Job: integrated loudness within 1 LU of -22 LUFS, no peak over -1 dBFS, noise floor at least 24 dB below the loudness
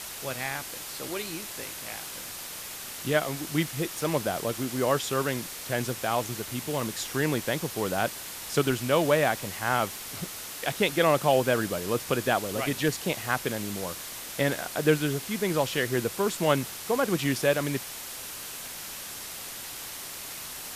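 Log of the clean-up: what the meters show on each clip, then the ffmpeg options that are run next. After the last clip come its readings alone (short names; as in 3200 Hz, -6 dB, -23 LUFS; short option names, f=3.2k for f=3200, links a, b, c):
noise floor -39 dBFS; noise floor target -53 dBFS; loudness -29.0 LUFS; peak -9.0 dBFS; loudness target -22.0 LUFS
-> -af "afftdn=nr=14:nf=-39"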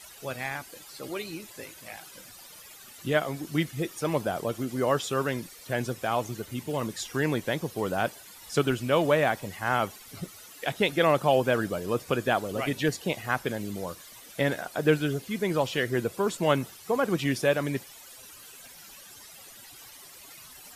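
noise floor -49 dBFS; noise floor target -53 dBFS
-> -af "afftdn=nr=6:nf=-49"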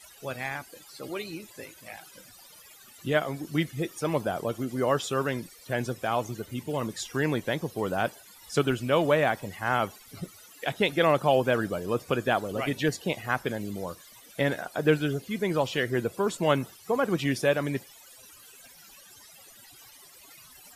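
noise floor -52 dBFS; noise floor target -53 dBFS
-> -af "afftdn=nr=6:nf=-52"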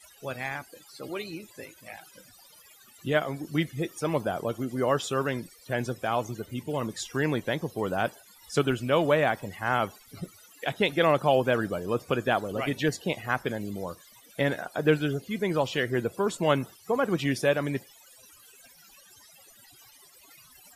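noise floor -55 dBFS; loudness -28.5 LUFS; peak -9.0 dBFS; loudness target -22.0 LUFS
-> -af "volume=6.5dB"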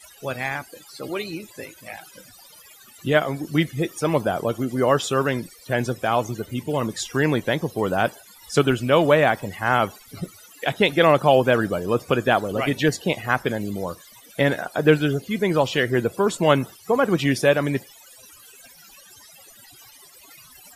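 loudness -22.0 LUFS; peak -2.5 dBFS; noise floor -49 dBFS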